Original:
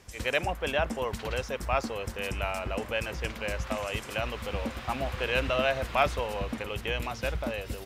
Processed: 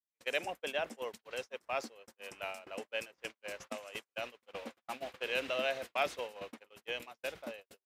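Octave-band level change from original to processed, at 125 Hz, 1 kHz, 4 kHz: -26.5, -10.0, -6.5 dB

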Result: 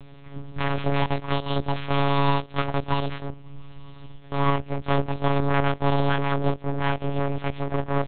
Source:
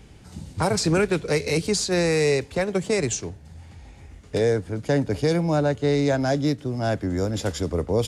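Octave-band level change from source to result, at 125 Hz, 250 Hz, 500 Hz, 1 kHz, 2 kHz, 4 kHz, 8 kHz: 0.0 dB, -3.5 dB, -5.5 dB, +6.5 dB, -1.5 dB, -3.0 dB, under -40 dB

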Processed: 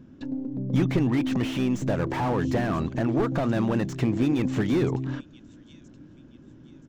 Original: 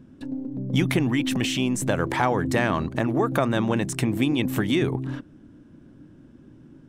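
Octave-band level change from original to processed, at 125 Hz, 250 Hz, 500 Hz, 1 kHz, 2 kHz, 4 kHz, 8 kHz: 0.0 dB, -0.5 dB, -2.0 dB, -4.5 dB, -7.0 dB, -9.0 dB, under -10 dB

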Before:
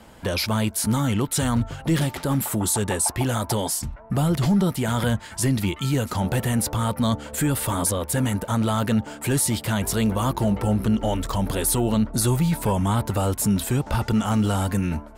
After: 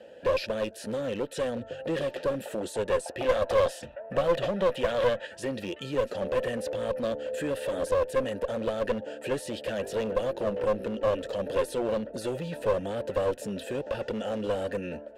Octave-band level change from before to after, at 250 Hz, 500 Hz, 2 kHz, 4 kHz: -13.0, +3.0, -5.0, -9.0 dB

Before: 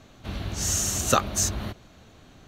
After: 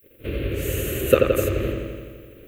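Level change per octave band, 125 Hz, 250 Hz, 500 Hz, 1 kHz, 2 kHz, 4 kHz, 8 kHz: +4.5, +6.5, +12.5, -5.5, +4.5, -4.5, -12.0 dB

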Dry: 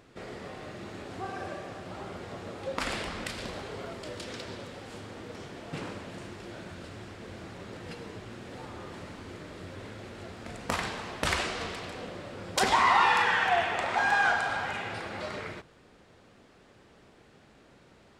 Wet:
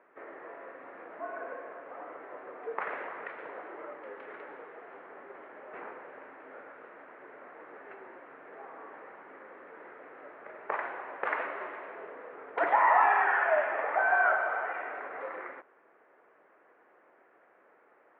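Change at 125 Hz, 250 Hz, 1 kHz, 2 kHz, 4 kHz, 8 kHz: under -25 dB, -11.5 dB, -0.5 dB, -1.5 dB, under -20 dB, under -35 dB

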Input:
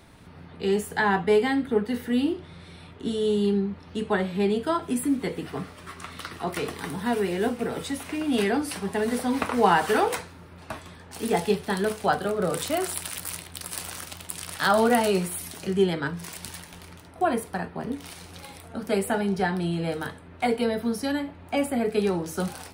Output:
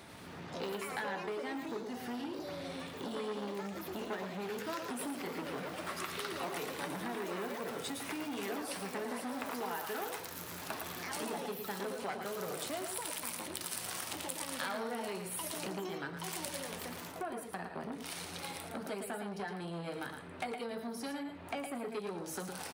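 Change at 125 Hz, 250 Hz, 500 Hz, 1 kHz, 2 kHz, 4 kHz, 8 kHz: -15.0, -15.0, -14.5, -13.0, -11.0, -8.0, -6.5 dB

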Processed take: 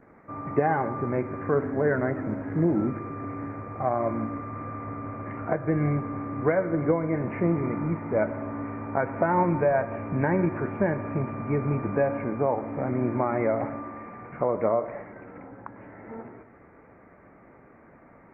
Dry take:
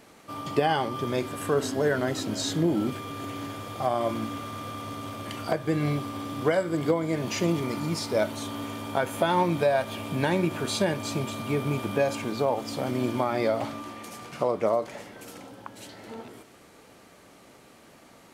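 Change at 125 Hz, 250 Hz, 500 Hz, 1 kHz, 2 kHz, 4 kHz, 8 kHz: +2.5 dB, +1.5 dB, +0.5 dB, +0.5 dB, -1.0 dB, under -35 dB, under -40 dB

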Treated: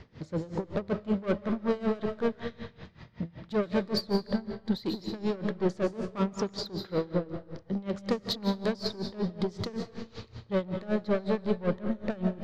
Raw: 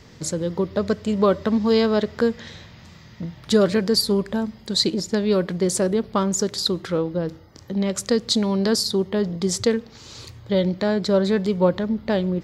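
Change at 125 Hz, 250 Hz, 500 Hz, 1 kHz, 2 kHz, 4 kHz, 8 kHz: -8.0, -9.0, -10.0, -8.5, -9.0, -13.5, -24.0 dB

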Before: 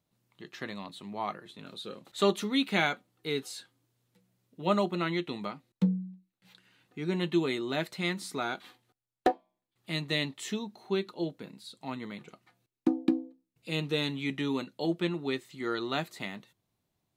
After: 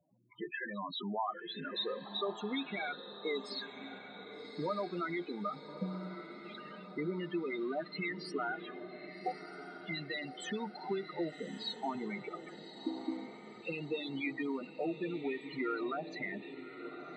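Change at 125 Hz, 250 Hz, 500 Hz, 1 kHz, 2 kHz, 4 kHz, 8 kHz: -10.5, -7.0, -5.5, -4.5, -4.5, -6.0, -13.0 dB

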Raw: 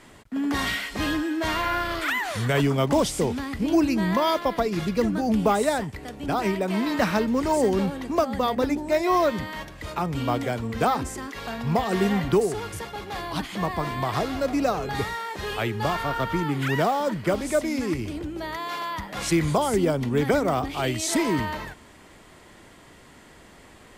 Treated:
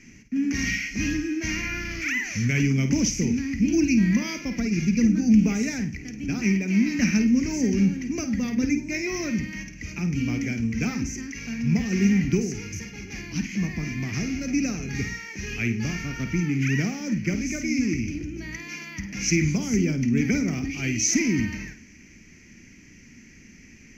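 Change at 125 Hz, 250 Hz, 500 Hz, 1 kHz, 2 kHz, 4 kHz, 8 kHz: +3.0, +3.5, -10.5, -19.0, +0.5, -3.0, +5.5 dB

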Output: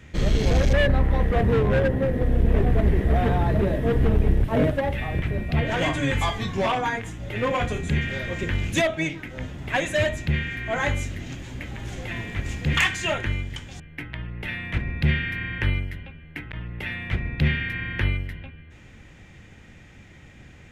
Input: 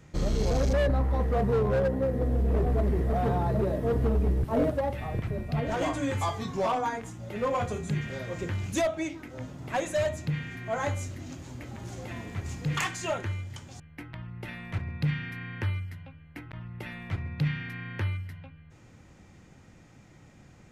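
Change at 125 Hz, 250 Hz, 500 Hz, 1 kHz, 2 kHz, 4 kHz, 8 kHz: +5.5, +5.0, +3.0, +3.0, +11.0, +10.0, +3.0 dB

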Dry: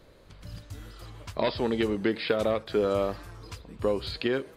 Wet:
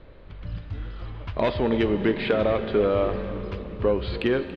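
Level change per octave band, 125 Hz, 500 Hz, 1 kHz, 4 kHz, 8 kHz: +7.5 dB, +4.5 dB, +3.5 dB, 0.0 dB, n/a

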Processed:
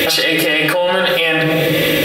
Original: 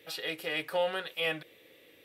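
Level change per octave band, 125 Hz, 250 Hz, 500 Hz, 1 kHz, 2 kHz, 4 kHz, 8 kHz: +29.0, +27.0, +19.0, +18.0, +21.0, +21.5, +25.5 dB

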